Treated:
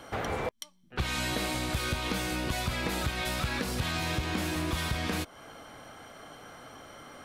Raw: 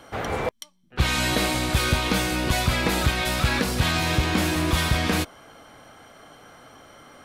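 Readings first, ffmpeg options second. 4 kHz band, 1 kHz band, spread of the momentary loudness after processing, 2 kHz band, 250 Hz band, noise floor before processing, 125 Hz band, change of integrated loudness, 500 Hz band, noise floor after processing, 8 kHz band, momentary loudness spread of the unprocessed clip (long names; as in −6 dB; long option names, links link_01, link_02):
−8.5 dB, −8.0 dB, 17 LU, −8.5 dB, −8.5 dB, −58 dBFS, −9.0 dB, −8.5 dB, −7.5 dB, −58 dBFS, −8.0 dB, 6 LU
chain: -af "acompressor=threshold=-31dB:ratio=3"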